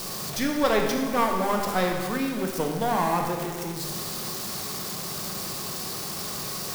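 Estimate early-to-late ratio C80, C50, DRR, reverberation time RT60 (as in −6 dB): 5.5 dB, 3.5 dB, 2.0 dB, 1.8 s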